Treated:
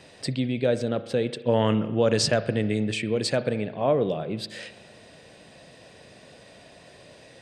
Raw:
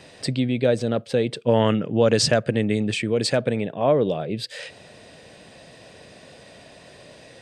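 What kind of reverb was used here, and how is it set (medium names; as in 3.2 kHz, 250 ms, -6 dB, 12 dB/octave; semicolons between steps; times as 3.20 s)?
spring tank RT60 1.2 s, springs 37 ms, chirp 30 ms, DRR 12.5 dB; trim -3.5 dB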